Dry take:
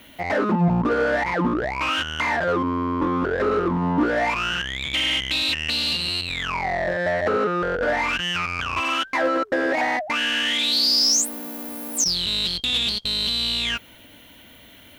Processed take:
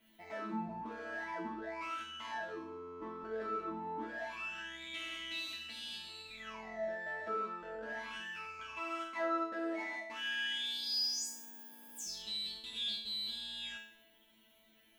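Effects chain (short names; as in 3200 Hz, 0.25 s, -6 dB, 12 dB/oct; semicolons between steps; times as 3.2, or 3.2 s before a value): resonator bank A3 fifth, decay 0.6 s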